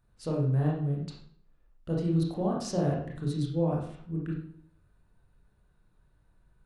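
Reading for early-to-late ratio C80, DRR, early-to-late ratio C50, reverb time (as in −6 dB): 7.0 dB, −3.0 dB, 3.0 dB, 0.60 s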